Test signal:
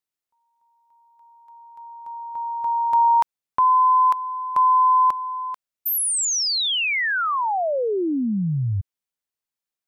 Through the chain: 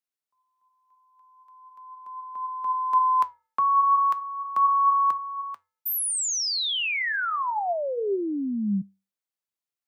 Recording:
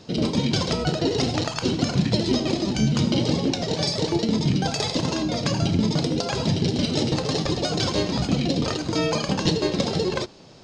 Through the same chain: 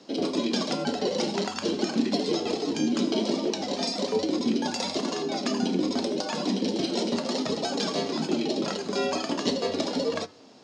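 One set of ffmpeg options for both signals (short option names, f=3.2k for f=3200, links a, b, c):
-af "bandreject=f=402.6:t=h:w=4,bandreject=f=805.2:t=h:w=4,bandreject=f=1.2078k:t=h:w=4,bandreject=f=1.6104k:t=h:w=4,bandreject=f=2.013k:t=h:w=4,flanger=delay=4.8:depth=5.3:regen=78:speed=0.39:shape=triangular,afreqshift=93"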